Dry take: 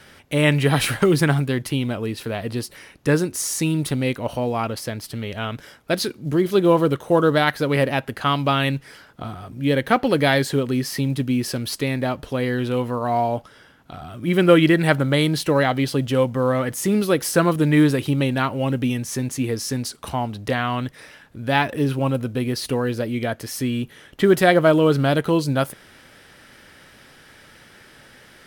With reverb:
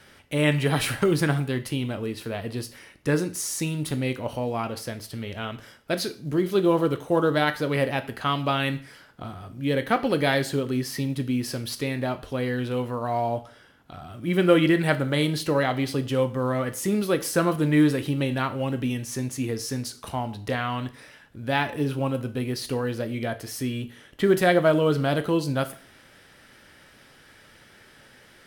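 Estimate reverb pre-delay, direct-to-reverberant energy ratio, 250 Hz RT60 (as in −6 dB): 7 ms, 10.0 dB, 0.45 s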